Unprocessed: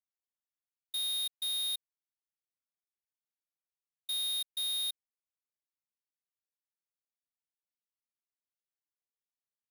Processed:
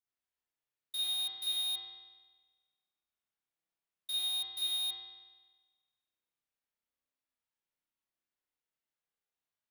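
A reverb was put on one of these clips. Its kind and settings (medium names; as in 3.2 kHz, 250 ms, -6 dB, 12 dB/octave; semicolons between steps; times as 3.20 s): spring tank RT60 1.3 s, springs 31 ms, chirp 20 ms, DRR -7 dB; trim -3.5 dB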